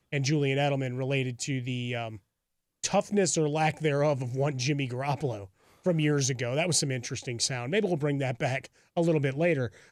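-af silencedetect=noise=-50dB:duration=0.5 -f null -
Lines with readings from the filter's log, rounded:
silence_start: 2.19
silence_end: 2.83 | silence_duration: 0.65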